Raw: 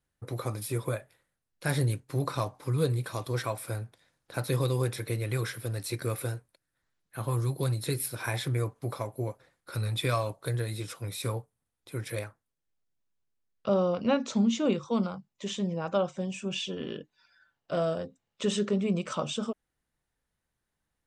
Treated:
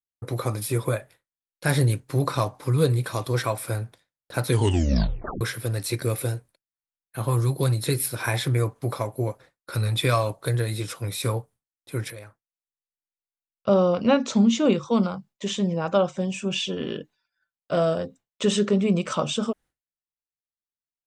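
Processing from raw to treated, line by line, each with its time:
4.47 s: tape stop 0.94 s
5.96–7.21 s: dynamic bell 1.3 kHz, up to -5 dB, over -54 dBFS, Q 1.3
12.10–13.68 s: compression 2.5:1, threshold -50 dBFS
whole clip: expander -50 dBFS; trim +6.5 dB

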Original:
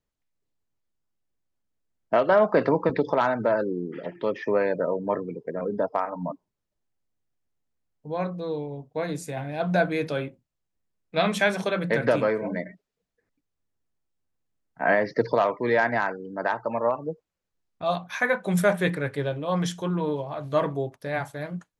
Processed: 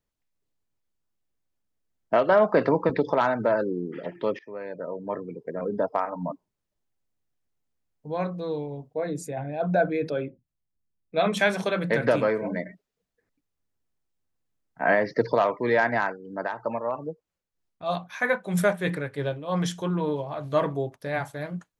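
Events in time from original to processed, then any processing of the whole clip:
4.39–5.75 s: fade in, from -22 dB
8.94–11.37 s: resonances exaggerated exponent 1.5
16.04–19.60 s: tremolo 3.1 Hz, depth 52%

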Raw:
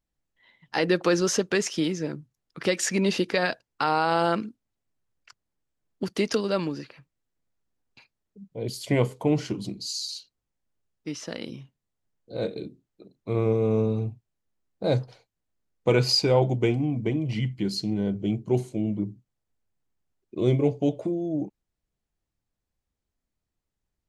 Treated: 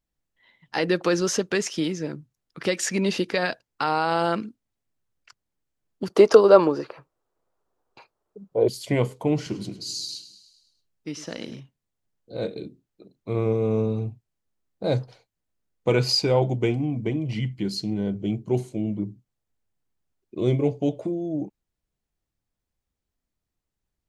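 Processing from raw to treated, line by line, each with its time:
6.10–8.69 s: high-order bell 690 Hz +14 dB 2.3 oct
9.36–11.60 s: feedback delay 104 ms, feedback 60%, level -14 dB

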